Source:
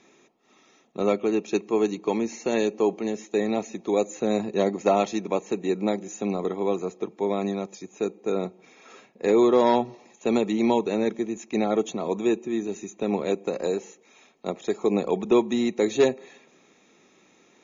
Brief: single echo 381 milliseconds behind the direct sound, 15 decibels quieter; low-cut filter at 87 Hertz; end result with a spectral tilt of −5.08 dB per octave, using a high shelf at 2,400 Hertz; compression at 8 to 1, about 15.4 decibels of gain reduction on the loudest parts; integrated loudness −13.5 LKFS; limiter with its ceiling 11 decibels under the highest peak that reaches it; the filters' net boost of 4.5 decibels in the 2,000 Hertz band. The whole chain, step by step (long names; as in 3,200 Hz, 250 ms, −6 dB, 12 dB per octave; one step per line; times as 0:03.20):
high-pass filter 87 Hz
parametric band 2,000 Hz +9 dB
high-shelf EQ 2,400 Hz −6.5 dB
downward compressor 8 to 1, threshold −31 dBFS
brickwall limiter −30 dBFS
single-tap delay 381 ms −15 dB
level +27.5 dB